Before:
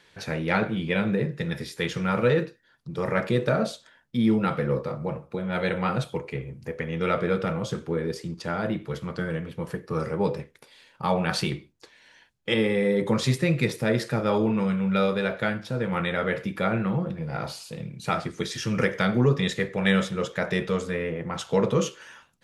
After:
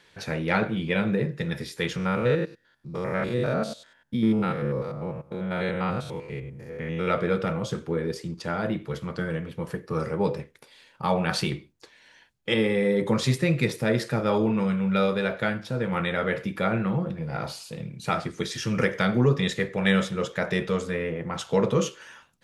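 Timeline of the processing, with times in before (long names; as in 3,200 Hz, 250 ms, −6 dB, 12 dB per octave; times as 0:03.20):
0:01.96–0:07.08: spectrum averaged block by block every 100 ms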